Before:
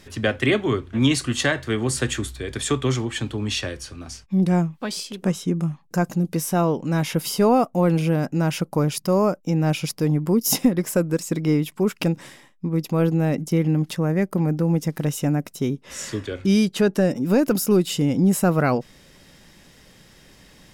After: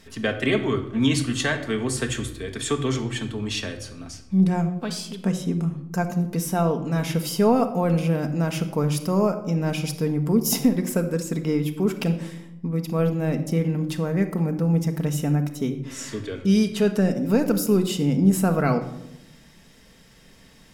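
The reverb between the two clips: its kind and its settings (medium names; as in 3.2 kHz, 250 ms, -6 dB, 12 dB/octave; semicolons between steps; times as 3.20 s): simulated room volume 2700 m³, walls furnished, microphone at 1.6 m; trim -3.5 dB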